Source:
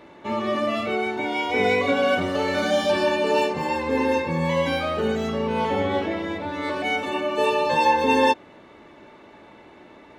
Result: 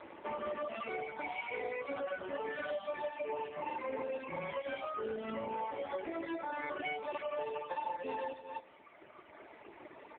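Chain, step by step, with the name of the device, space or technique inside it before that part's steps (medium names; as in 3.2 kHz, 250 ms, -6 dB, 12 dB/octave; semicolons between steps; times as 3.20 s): 2.07–3.42 s: low-pass 5.3 kHz 12 dB/octave; loudspeakers at several distances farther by 31 m -5 dB, 90 m -8 dB; Schroeder reverb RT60 1.3 s, combs from 30 ms, DRR 19.5 dB; reverb removal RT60 1.8 s; voicemail (band-pass 360–3200 Hz; compression 10:1, threshold -36 dBFS, peak gain reduction 20.5 dB; trim +1.5 dB; AMR-NB 5.9 kbps 8 kHz)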